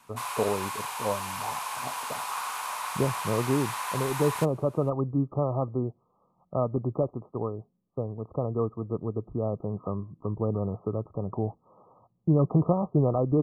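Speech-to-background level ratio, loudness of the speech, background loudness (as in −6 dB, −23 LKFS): 4.0 dB, −29.5 LKFS, −33.5 LKFS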